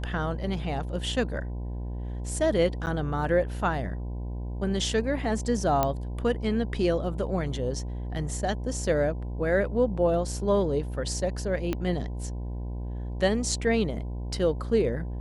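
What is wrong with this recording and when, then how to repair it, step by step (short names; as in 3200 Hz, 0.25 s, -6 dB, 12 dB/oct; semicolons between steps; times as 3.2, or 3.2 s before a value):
buzz 60 Hz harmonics 17 -33 dBFS
2.86–2.87 gap 9.5 ms
5.83 pop -10 dBFS
11.73 pop -15 dBFS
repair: de-click; de-hum 60 Hz, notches 17; interpolate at 2.86, 9.5 ms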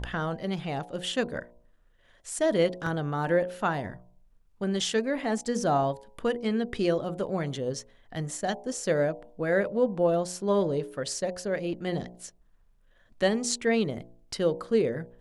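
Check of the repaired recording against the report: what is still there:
11.73 pop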